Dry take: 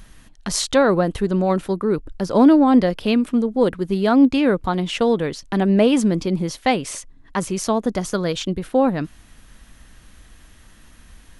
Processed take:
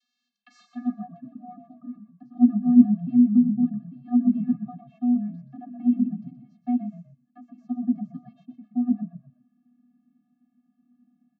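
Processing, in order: vocoder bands 32, square 244 Hz; band-pass sweep 4.4 kHz -> 330 Hz, 0.36–0.87 s; frequency-shifting echo 124 ms, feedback 31%, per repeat -36 Hz, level -10 dB

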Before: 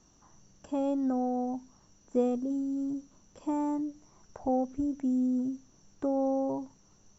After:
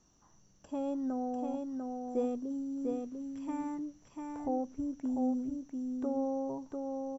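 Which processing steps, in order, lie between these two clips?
2.94–3.79 s: ten-band graphic EQ 125 Hz +5 dB, 500 Hz -9 dB, 2 kHz +8 dB; delay 696 ms -4 dB; trim -5.5 dB

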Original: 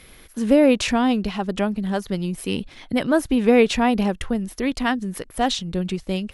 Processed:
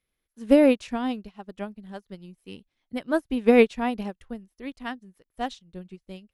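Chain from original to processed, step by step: upward expansion 2.5:1, over -35 dBFS

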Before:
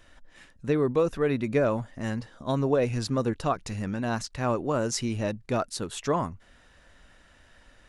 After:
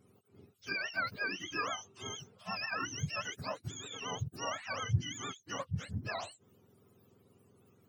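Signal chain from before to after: spectrum inverted on a logarithmic axis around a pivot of 840 Hz; vibrato 8.4 Hz 70 cents; trim -8.5 dB

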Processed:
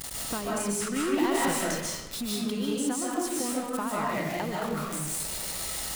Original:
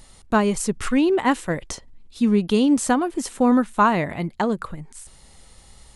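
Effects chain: jump at every zero crossing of -29 dBFS; high-pass 130 Hz 6 dB/octave; treble shelf 6.7 kHz +7.5 dB; compression, threshold -29 dBFS, peak gain reduction 16 dB; 0.96–1.52 s: waveshaping leveller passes 2; reverberation RT60 0.90 s, pre-delay 105 ms, DRR -5 dB; trim -4 dB

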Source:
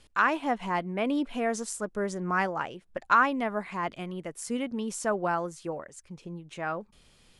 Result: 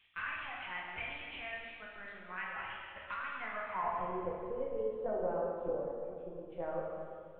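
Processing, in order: compression 8:1, threshold -30 dBFS, peak gain reduction 14 dB; band-pass sweep 2.4 kHz -> 500 Hz, 3.24–4.10 s; LPC vocoder at 8 kHz pitch kept; plate-style reverb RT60 2.3 s, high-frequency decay 0.95×, pre-delay 0 ms, DRR -3.5 dB

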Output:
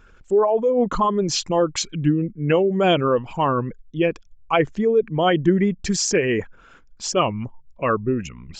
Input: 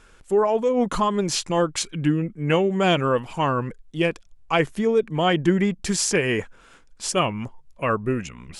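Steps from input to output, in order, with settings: resonances exaggerated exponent 1.5; resampled via 16 kHz; trim +2 dB

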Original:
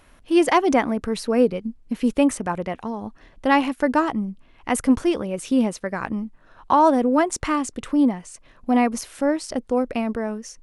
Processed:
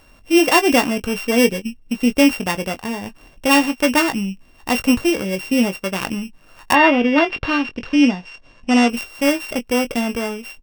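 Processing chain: sorted samples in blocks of 16 samples; 6.72–8.88 s: low-pass 3.2 kHz -> 7.9 kHz 24 dB/octave; doubling 21 ms -9.5 dB; trim +3 dB

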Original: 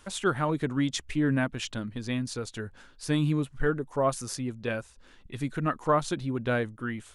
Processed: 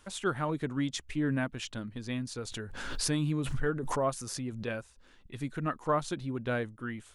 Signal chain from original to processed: 2.38–4.66 s: swell ahead of each attack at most 36 dB/s; trim -4.5 dB

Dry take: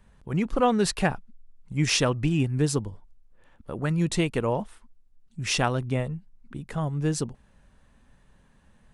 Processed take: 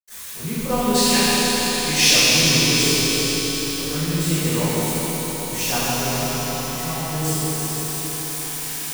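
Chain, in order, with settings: zero-crossing glitches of -17 dBFS; 0.86–2.01 s: frequency weighting D; echo with a slow build-up 82 ms, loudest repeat 5, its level -13.5 dB; reverberation RT60 4.8 s, pre-delay 77 ms; trim -2.5 dB

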